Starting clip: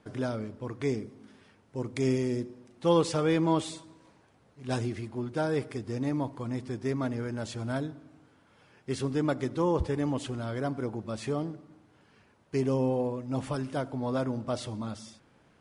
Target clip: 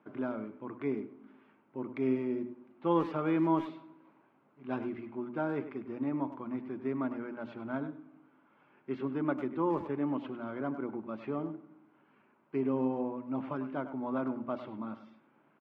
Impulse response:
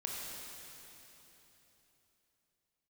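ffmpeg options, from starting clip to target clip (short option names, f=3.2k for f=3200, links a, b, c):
-filter_complex "[0:a]highpass=f=180:w=0.5412,highpass=f=180:w=1.3066,equalizer=f=190:t=q:w=4:g=-5,equalizer=f=480:t=q:w=4:g=-10,equalizer=f=720:t=q:w=4:g=-5,equalizer=f=1.8k:t=q:w=4:g=-9,lowpass=f=2.2k:w=0.5412,lowpass=f=2.2k:w=1.3066,bandreject=f=60:t=h:w=6,bandreject=f=120:t=h:w=6,bandreject=f=180:t=h:w=6,bandreject=f=240:t=h:w=6,bandreject=f=300:t=h:w=6,asplit=2[a][b];[b]adelay=100,highpass=300,lowpass=3.4k,asoftclip=type=hard:threshold=-26.5dB,volume=-11dB[c];[a][c]amix=inputs=2:normalize=0"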